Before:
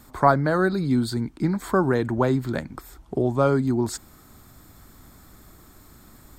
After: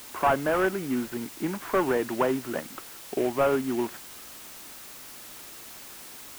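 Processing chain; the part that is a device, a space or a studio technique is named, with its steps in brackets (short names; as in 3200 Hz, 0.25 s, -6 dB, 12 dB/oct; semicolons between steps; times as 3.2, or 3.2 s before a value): army field radio (BPF 330–3100 Hz; CVSD 16 kbps; white noise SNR 15 dB)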